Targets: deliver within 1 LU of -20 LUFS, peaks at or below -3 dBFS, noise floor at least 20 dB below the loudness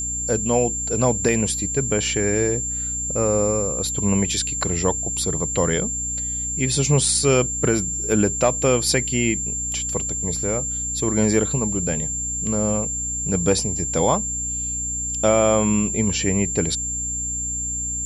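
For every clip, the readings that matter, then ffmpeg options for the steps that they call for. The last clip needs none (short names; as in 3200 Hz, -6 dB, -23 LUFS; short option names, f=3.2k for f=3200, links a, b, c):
hum 60 Hz; harmonics up to 300 Hz; hum level -32 dBFS; steady tone 7300 Hz; tone level -24 dBFS; loudness -20.5 LUFS; peak -6.5 dBFS; loudness target -20.0 LUFS
-> -af "bandreject=f=60:t=h:w=6,bandreject=f=120:t=h:w=6,bandreject=f=180:t=h:w=6,bandreject=f=240:t=h:w=6,bandreject=f=300:t=h:w=6"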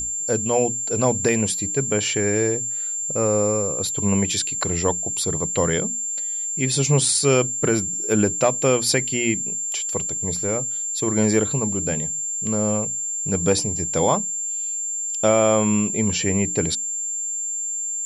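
hum none; steady tone 7300 Hz; tone level -24 dBFS
-> -af "bandreject=f=7.3k:w=30"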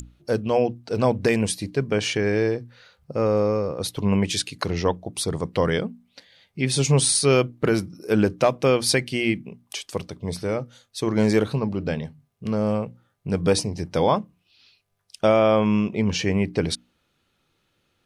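steady tone none; loudness -23.0 LUFS; peak -7.5 dBFS; loudness target -20.0 LUFS
-> -af "volume=3dB"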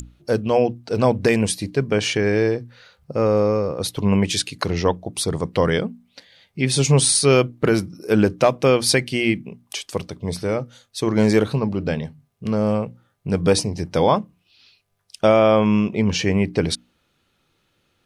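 loudness -20.0 LUFS; peak -4.5 dBFS; noise floor -67 dBFS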